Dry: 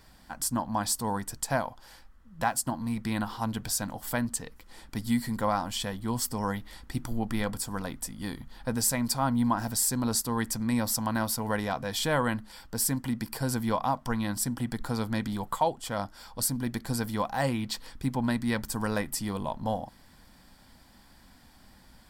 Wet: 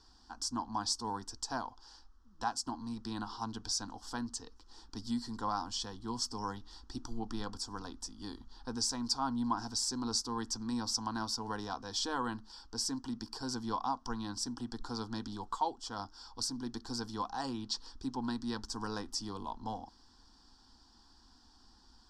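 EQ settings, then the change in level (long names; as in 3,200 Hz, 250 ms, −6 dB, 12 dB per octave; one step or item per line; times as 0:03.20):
transistor ladder low-pass 6,200 Hz, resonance 55%
phaser with its sweep stopped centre 580 Hz, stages 6
+5.0 dB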